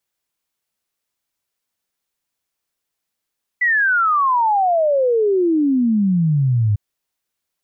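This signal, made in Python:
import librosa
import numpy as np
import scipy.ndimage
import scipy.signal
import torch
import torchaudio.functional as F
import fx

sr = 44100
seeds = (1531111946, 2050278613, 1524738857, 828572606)

y = fx.ess(sr, length_s=3.15, from_hz=2000.0, to_hz=100.0, level_db=-13.0)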